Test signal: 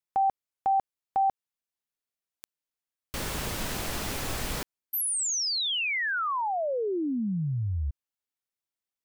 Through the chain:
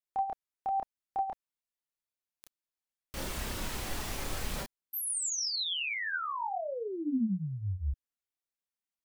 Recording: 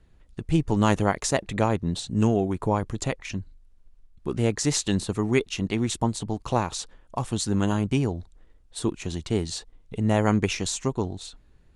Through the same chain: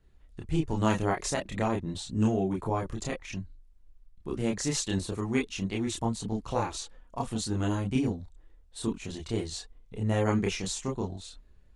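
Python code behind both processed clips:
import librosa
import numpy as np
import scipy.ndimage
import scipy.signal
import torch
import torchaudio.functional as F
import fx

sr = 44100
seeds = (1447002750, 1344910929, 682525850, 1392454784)

y = fx.chorus_voices(x, sr, voices=6, hz=0.29, base_ms=29, depth_ms=3.0, mix_pct=50)
y = y * 10.0 ** (-2.0 / 20.0)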